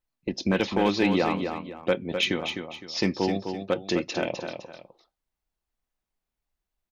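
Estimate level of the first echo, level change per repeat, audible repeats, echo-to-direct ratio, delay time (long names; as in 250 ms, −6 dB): −7.0 dB, −9.5 dB, 2, −6.5 dB, 256 ms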